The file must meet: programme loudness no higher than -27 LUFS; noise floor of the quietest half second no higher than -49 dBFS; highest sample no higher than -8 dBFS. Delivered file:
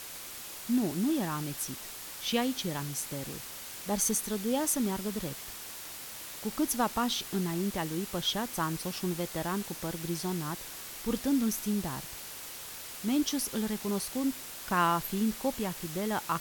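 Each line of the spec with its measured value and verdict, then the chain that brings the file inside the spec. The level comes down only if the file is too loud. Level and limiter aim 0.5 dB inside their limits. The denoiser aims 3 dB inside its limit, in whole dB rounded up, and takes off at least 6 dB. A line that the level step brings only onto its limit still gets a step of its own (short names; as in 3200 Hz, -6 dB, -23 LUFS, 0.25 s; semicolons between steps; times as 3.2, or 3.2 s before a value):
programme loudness -32.5 LUFS: OK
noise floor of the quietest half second -43 dBFS: fail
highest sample -15.0 dBFS: OK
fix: denoiser 9 dB, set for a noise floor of -43 dBFS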